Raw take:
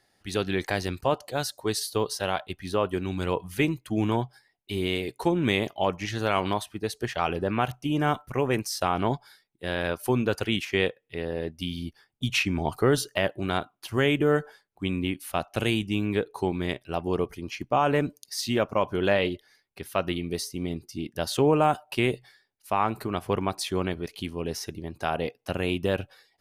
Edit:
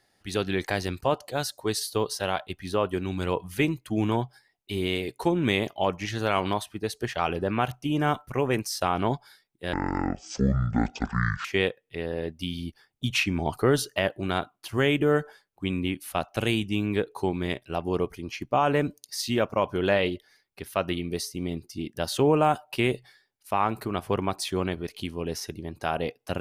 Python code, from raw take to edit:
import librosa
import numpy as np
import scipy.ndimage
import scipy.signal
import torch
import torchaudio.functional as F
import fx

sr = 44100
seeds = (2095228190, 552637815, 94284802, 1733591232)

y = fx.edit(x, sr, fx.speed_span(start_s=9.73, length_s=0.91, speed=0.53), tone=tone)